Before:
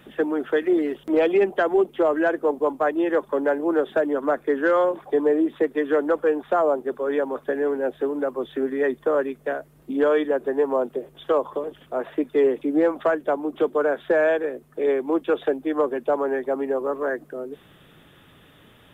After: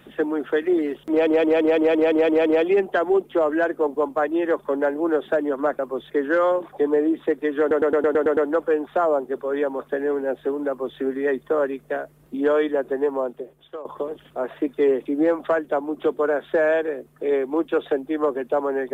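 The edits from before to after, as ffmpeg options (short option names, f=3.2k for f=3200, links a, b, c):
-filter_complex "[0:a]asplit=19[a][b][c][d][e][f][g][h][i][j][k][l][m][n][o][p][q][r][s];[a]atrim=end=1.272[t];[b]atrim=start=1.098:end=1.272[u];[c]atrim=start=1.098:end=1.272[v];[d]atrim=start=1.098:end=1.272[w];[e]atrim=start=1.098:end=1.272[x];[f]atrim=start=1.098:end=1.272[y];[g]atrim=start=1.098:end=1.272[z];[h]atrim=start=1.098:end=1.272[aa];[i]atrim=start=1.098:end=4.432[ab];[j]atrim=start=8.238:end=8.552[ac];[k]atrim=start=4.428:end=6.042[ad];[l]atrim=start=5.928:end=6.042[ae];[m]atrim=start=5.928:end=6.042[af];[n]atrim=start=5.928:end=6.042[ag];[o]atrim=start=5.928:end=6.042[ah];[p]atrim=start=5.928:end=6.042[ai];[q]atrim=start=5.928:end=6.042[aj];[r]atrim=start=5.928:end=11.41,asetpts=PTS-STARTPTS,afade=t=out:st=4.602:d=0.88:silence=0.125893[ak];[s]atrim=start=11.41,asetpts=PTS-STARTPTS,afade=t=in:d=0.004:c=hsin:silence=0.125893[al];[t][u]acrossfade=d=0.004:c1=hsin:c2=hsin[am];[am][v]acrossfade=d=0.004:c1=hsin:c2=hsin[an];[an][w]acrossfade=d=0.004:c1=hsin:c2=hsin[ao];[ao][x]acrossfade=d=0.004:c1=hsin:c2=hsin[ap];[ap][y]acrossfade=d=0.004:c1=hsin:c2=hsin[aq];[aq][z]acrossfade=d=0.004:c1=hsin:c2=hsin[ar];[ar][aa]acrossfade=d=0.004:c1=hsin:c2=hsin[as];[as][ab]acrossfade=d=0.004:c1=hsin:c2=hsin[at];[at][ac]acrossfade=d=0.004:c1=hsin:c2=hsin[au];[au][ad]acrossfade=d=0.004:c1=hsin:c2=hsin[av];[av][ae]acrossfade=d=0.004:c1=hsin:c2=hsin[aw];[aw][af]acrossfade=d=0.004:c1=hsin:c2=hsin[ax];[ax][ag]acrossfade=d=0.004:c1=hsin:c2=hsin[ay];[ay][ah]acrossfade=d=0.004:c1=hsin:c2=hsin[az];[az][ai]acrossfade=d=0.004:c1=hsin:c2=hsin[ba];[ba][aj]acrossfade=d=0.004:c1=hsin:c2=hsin[bb];[ak][al]concat=n=2:v=0:a=1[bc];[bb][bc]acrossfade=d=0.004:c1=hsin:c2=hsin"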